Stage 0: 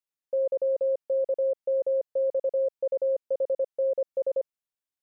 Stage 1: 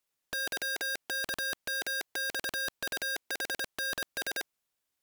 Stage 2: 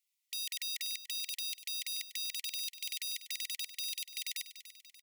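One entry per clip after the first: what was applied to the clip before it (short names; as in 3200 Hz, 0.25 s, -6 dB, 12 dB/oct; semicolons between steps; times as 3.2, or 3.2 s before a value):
sample leveller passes 3; sine folder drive 19 dB, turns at -21 dBFS; gain -8 dB
brick-wall FIR high-pass 1900 Hz; feedback echo 0.291 s, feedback 49%, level -13 dB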